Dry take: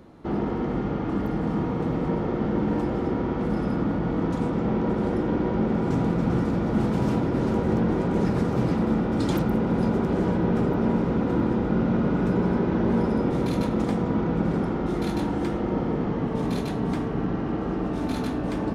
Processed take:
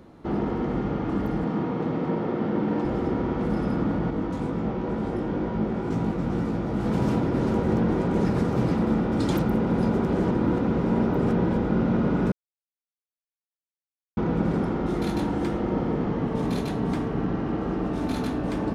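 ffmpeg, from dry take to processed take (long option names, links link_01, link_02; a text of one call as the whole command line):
ffmpeg -i in.wav -filter_complex "[0:a]asettb=1/sr,asplit=3[link_01][link_02][link_03];[link_01]atrim=end=1.444[link_04];[link_02]atrim=start=1.44:end=2.85,asetpts=PTS-STARTPTS,afade=type=in:duration=0.004:curve=qsin,afade=type=out:start_time=1.406:duration=0.004:curve=qsin,highpass=140,lowpass=5500[link_05];[link_03]atrim=start=2.846[link_06];[link_04][link_05]acrossfade=duration=0.004:curve1=hsin:curve2=qsin[link_07];[link_07][link_06]acrossfade=duration=0.004:curve1=qsin:curve2=hsin,asettb=1/sr,asplit=3[link_08][link_09][link_10];[link_08]atrim=end=4.104[link_11];[link_09]atrim=start=4.1:end=6.86,asetpts=PTS-STARTPTS,afade=type=in:duration=0.004:curve=qsin,afade=type=out:start_time=2.756:duration=0.004:curve=qsin,flanger=delay=17.5:depth=4.2:speed=2.1[link_12];[link_10]atrim=start=6.856[link_13];[link_11][link_12]acrossfade=duration=0.004:curve1=hsin:curve2=qsin[link_14];[link_14][link_13]acrossfade=duration=0.004:curve1=qsin:curve2=hsin,asplit=5[link_15][link_16][link_17][link_18][link_19];[link_15]atrim=end=10.312[link_20];[link_16]atrim=start=10.308:end=11.572,asetpts=PTS-STARTPTS,areverse[link_21];[link_17]atrim=start=11.568:end=12.32,asetpts=PTS-STARTPTS,afade=type=out:start_time=0.748:duration=0.004:curve=hsin[link_22];[link_18]atrim=start=12.32:end=14.17,asetpts=PTS-STARTPTS,volume=0[link_23];[link_19]atrim=start=14.17,asetpts=PTS-STARTPTS,afade=type=in:duration=0.004:curve=hsin[link_24];[link_20][link_21]acrossfade=duration=0.004:curve1=hsin:curve2=hsin[link_25];[link_22][link_23][link_24]concat=n=3:v=0:a=1[link_26];[link_25][link_26]acrossfade=duration=0.004:curve1=hsin:curve2=hsin" out.wav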